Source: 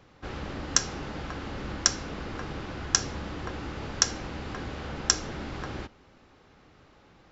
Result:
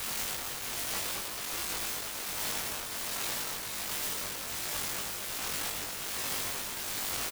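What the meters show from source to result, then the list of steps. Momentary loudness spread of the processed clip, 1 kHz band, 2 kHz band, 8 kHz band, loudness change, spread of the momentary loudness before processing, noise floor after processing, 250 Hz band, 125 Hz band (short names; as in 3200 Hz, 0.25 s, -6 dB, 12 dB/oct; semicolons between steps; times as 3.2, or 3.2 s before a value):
3 LU, -2.5 dB, -0.5 dB, n/a, -2.5 dB, 11 LU, -39 dBFS, -10.5 dB, -12.5 dB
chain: delta modulation 16 kbps, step -26 dBFS; Chebyshev high-pass 650 Hz, order 10; limiter -31 dBFS, peak gain reduction 10 dB; wrapped overs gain 39.5 dB; bit-crush 7-bit; tremolo triangle 1.3 Hz, depth 55%; doubler 20 ms -3 dB; on a send: echo with dull and thin repeats by turns 0.225 s, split 1500 Hz, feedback 61%, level -4.5 dB; on the sum: gain +7 dB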